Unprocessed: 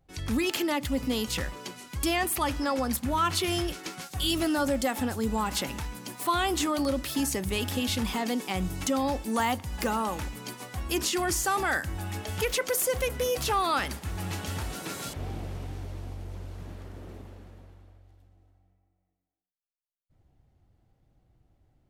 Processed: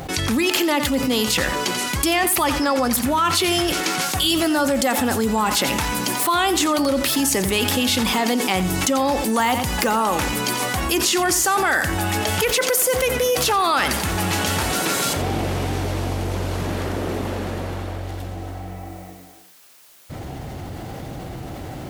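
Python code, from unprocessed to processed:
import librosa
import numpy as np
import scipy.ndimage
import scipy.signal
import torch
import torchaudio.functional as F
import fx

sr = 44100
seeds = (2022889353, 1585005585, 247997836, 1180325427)

p1 = fx.highpass(x, sr, hz=240.0, slope=6)
p2 = p1 + fx.echo_single(p1, sr, ms=88, db=-14.0, dry=0)
p3 = fx.env_flatten(p2, sr, amount_pct=70)
y = F.gain(torch.from_numpy(p3), 5.5).numpy()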